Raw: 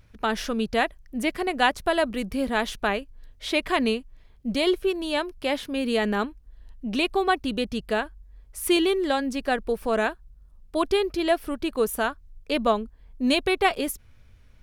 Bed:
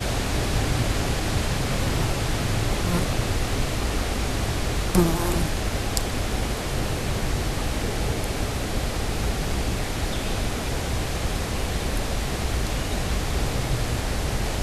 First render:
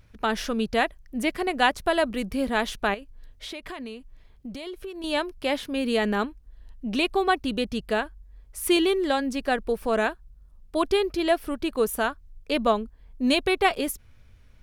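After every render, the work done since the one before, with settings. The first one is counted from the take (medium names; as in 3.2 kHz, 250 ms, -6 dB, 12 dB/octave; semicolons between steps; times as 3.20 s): 2.94–5.04 s: compression, threshold -34 dBFS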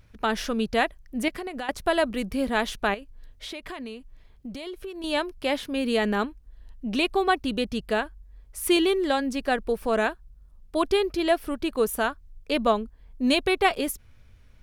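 1.28–1.69 s: compression 12:1, threshold -29 dBFS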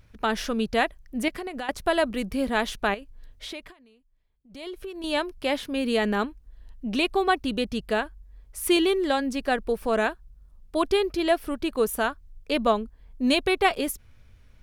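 3.59–4.64 s: dip -20 dB, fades 0.15 s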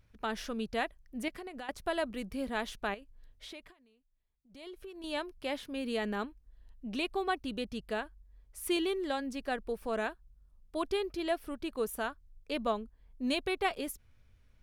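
trim -10 dB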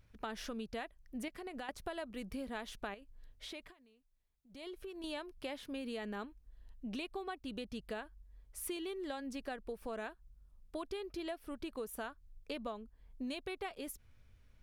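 compression, threshold -39 dBFS, peak gain reduction 13.5 dB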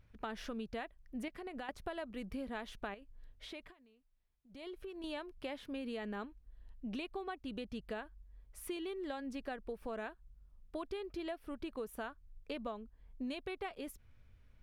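tone controls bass +1 dB, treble -7 dB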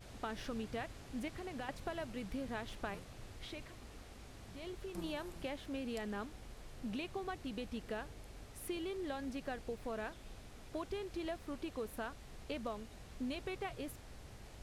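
add bed -28.5 dB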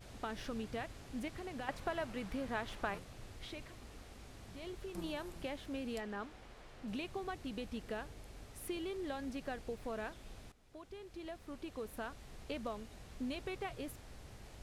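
1.67–2.98 s: peaking EQ 1.2 kHz +5.5 dB 2.3 oct; 6.00–6.88 s: overdrive pedal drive 8 dB, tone 2.2 kHz, clips at -31.5 dBFS; 10.52–12.20 s: fade in, from -16.5 dB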